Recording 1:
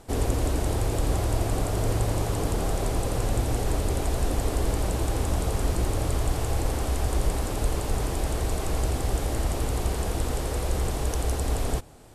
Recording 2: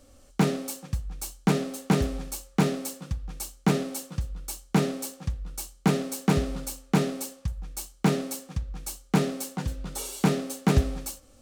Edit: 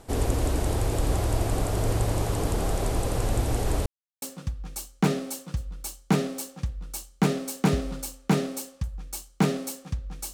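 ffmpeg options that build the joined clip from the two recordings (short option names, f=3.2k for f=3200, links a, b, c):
-filter_complex "[0:a]apad=whole_dur=10.33,atrim=end=10.33,asplit=2[a][b];[a]atrim=end=3.86,asetpts=PTS-STARTPTS,afade=t=out:st=3.856:d=0.004:c=hsin[c];[b]atrim=start=3.86:end=4.22,asetpts=PTS-STARTPTS,volume=0[d];[1:a]atrim=start=2.86:end=8.97,asetpts=PTS-STARTPTS,afade=t=in:d=0.004:c=hsin[e];[c][d][e]concat=n=3:v=0:a=1"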